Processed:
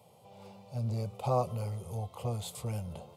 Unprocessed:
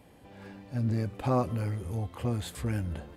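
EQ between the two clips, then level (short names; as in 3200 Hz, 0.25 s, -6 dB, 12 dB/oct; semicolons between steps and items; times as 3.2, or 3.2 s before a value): HPF 110 Hz 24 dB/oct; fixed phaser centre 700 Hz, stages 4; +1.0 dB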